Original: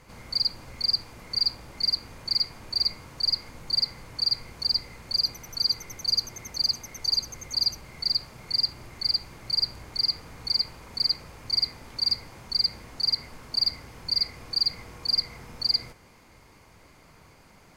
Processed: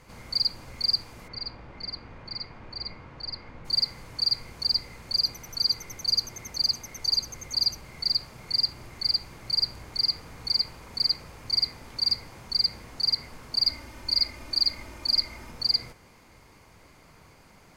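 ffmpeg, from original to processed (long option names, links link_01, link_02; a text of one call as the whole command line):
ffmpeg -i in.wav -filter_complex "[0:a]asplit=3[link_01][link_02][link_03];[link_01]afade=type=out:start_time=1.27:duration=0.02[link_04];[link_02]lowpass=2500,afade=type=in:start_time=1.27:duration=0.02,afade=type=out:start_time=3.64:duration=0.02[link_05];[link_03]afade=type=in:start_time=3.64:duration=0.02[link_06];[link_04][link_05][link_06]amix=inputs=3:normalize=0,asettb=1/sr,asplit=3[link_07][link_08][link_09];[link_07]atrim=end=13.664[link_10];[link_08]atrim=start=13.66:end=15.51,asetpts=PTS-STARTPTS,afade=type=in:duration=0.004:curve=qsin,afade=type=out:start_time=1.846:duration=0.004:curve=qsin,aecho=1:1:3.3:0.65,atrim=end_sample=81585[link_11];[link_09]atrim=start=15.506[link_12];[link_10][link_11]acrossfade=duration=0.004:curve1=hsin:curve2=qsin[link_13];[link_13][link_12]acrossfade=duration=0.004:curve1=qsin:curve2=hsin" out.wav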